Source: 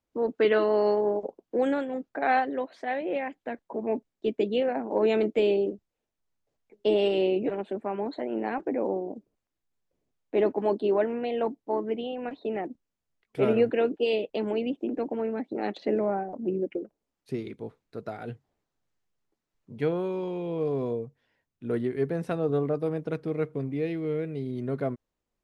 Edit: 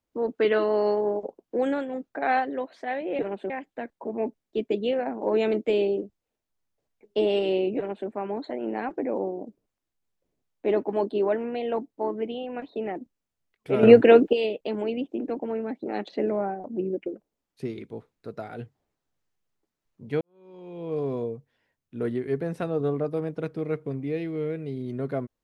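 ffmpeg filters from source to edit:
-filter_complex "[0:a]asplit=6[s0][s1][s2][s3][s4][s5];[s0]atrim=end=3.192[s6];[s1]atrim=start=7.458:end=7.772[s7];[s2]atrim=start=3.188:end=13.522[s8];[s3]atrim=start=13.518:end=14.022,asetpts=PTS-STARTPTS,volume=3.35[s9];[s4]atrim=start=14.018:end=19.9,asetpts=PTS-STARTPTS,afade=t=out:st=5.878:d=0.004:c=hsin[s10];[s5]atrim=start=19.9,asetpts=PTS-STARTPTS,afade=t=in:d=0.78:c=qua[s11];[s6][s7]acrossfade=d=0.004:c1=hsin:c2=hsin[s12];[s12][s8]acrossfade=d=0.004:c1=hsin:c2=hsin[s13];[s13][s9]acrossfade=d=0.004:c1=hsin:c2=hsin[s14];[s10][s11]concat=n=2:v=0:a=1[s15];[s14][s15]acrossfade=d=0.004:c1=hsin:c2=hsin"

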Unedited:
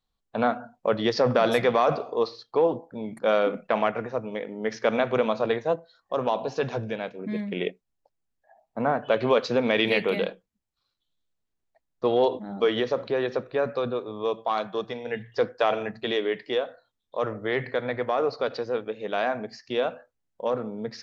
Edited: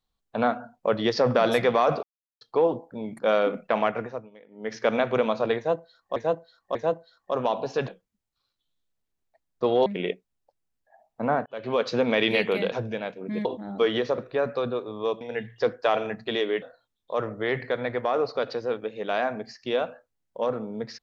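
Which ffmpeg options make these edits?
-filter_complex "[0:a]asplit=15[s0][s1][s2][s3][s4][s5][s6][s7][s8][s9][s10][s11][s12][s13][s14];[s0]atrim=end=2.03,asetpts=PTS-STARTPTS,afade=t=out:st=2.026:d=0.004:c=hsin[s15];[s1]atrim=start=2.03:end=2.41,asetpts=PTS-STARTPTS,volume=0[s16];[s2]atrim=start=2.41:end=4.3,asetpts=PTS-STARTPTS,afade=t=in:d=0.004:c=hsin,afade=t=out:st=1.6:d=0.29:silence=0.11885[s17];[s3]atrim=start=4.3:end=4.5,asetpts=PTS-STARTPTS,volume=0.119[s18];[s4]atrim=start=4.5:end=6.162,asetpts=PTS-STARTPTS,afade=t=in:d=0.29:silence=0.11885[s19];[s5]atrim=start=5.568:end=6.162[s20];[s6]atrim=start=5.568:end=6.702[s21];[s7]atrim=start=10.288:end=12.272[s22];[s8]atrim=start=7.428:end=9.03,asetpts=PTS-STARTPTS,afade=t=out:st=1.598:d=0.004:c=hsin[s23];[s9]atrim=start=9.03:end=10.292,asetpts=PTS-STARTPTS,afade=t=in:d=0.46[s24];[s10]atrim=start=6.698:end=7.432[s25];[s11]atrim=start=12.268:end=13.002[s26];[s12]atrim=start=13.378:end=14.412[s27];[s13]atrim=start=14.968:end=16.382[s28];[s14]atrim=start=16.658[s29];[s15][s16][s17][s18][s19]concat=n=5:v=0:a=1[s30];[s30][s20]acrossfade=d=0.004:c1=hsin:c2=hsin[s31];[s31][s21]acrossfade=d=0.004:c1=hsin:c2=hsin[s32];[s32][s22]acrossfade=d=0.004:c1=hsin:c2=hsin[s33];[s23][s24]concat=n=2:v=0:a=1[s34];[s33][s34]acrossfade=d=0.004:c1=hsin:c2=hsin[s35];[s35][s25]acrossfade=d=0.004:c1=hsin:c2=hsin[s36];[s36][s26]acrossfade=d=0.004:c1=hsin:c2=hsin[s37];[s37][s27]acrossfade=d=0.004:c1=hsin:c2=hsin[s38];[s38][s28]acrossfade=d=0.004:c1=hsin:c2=hsin[s39];[s39][s29]acrossfade=d=0.004:c1=hsin:c2=hsin"

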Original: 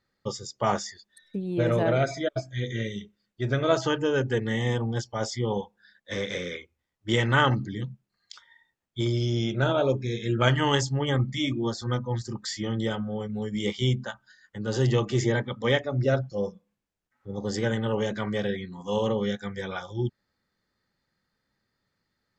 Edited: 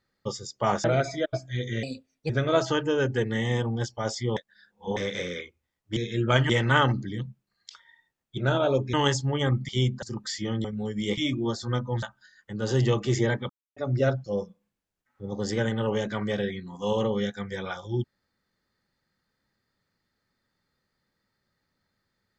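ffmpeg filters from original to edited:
-filter_complex "[0:a]asplit=17[s0][s1][s2][s3][s4][s5][s6][s7][s8][s9][s10][s11][s12][s13][s14][s15][s16];[s0]atrim=end=0.842[s17];[s1]atrim=start=1.868:end=2.864[s18];[s2]atrim=start=2.86:end=3.45,asetpts=PTS-STARTPTS,asetrate=56007,aresample=44100,atrim=end_sample=20487,asetpts=PTS-STARTPTS[s19];[s3]atrim=start=3.446:end=5.522[s20];[s4]atrim=start=5.518:end=6.122,asetpts=PTS-STARTPTS,areverse[s21];[s5]atrim=start=6.118:end=7.122[s22];[s6]atrim=start=10.078:end=10.612[s23];[s7]atrim=start=7.118:end=9.002[s24];[s8]atrim=start=9.518:end=10.082[s25];[s9]atrim=start=10.608:end=11.362[s26];[s10]atrim=start=13.738:end=14.082[s27];[s11]atrim=start=12.208:end=12.832[s28];[s12]atrim=start=13.208:end=13.742[s29];[s13]atrim=start=11.358:end=12.212[s30];[s14]atrim=start=14.078:end=15.55,asetpts=PTS-STARTPTS,afade=t=out:st=1.468:d=0.004:c=hsin[s31];[s15]atrim=start=15.55:end=15.82,asetpts=PTS-STARTPTS,volume=0[s32];[s16]atrim=start=15.82,asetpts=PTS-STARTPTS,afade=t=in:d=0.004:c=hsin[s33];[s17][s18]acrossfade=d=0.004:c1=hsin:c2=hsin[s34];[s34][s19]acrossfade=d=0.004:c1=hsin:c2=hsin[s35];[s35][s20]acrossfade=d=0.004:c1=hsin:c2=hsin[s36];[s36][s21]acrossfade=d=0.004:c1=hsin:c2=hsin[s37];[s37][s22]acrossfade=d=0.004:c1=hsin:c2=hsin[s38];[s38][s23]acrossfade=d=0.004:c1=hsin:c2=hsin[s39];[s39][s24]acrossfade=d=0.004:c1=hsin:c2=hsin[s40];[s40][s25]acrossfade=d=0.004:c1=hsin:c2=hsin[s41];[s41][s26]acrossfade=d=0.004:c1=hsin:c2=hsin[s42];[s42][s27]acrossfade=d=0.004:c1=hsin:c2=hsin[s43];[s43][s28]acrossfade=d=0.004:c1=hsin:c2=hsin[s44];[s44][s29]acrossfade=d=0.004:c1=hsin:c2=hsin[s45];[s45][s30]acrossfade=d=0.004:c1=hsin:c2=hsin[s46];[s31][s32][s33]concat=n=3:v=0:a=1[s47];[s46][s47]acrossfade=d=0.004:c1=hsin:c2=hsin"

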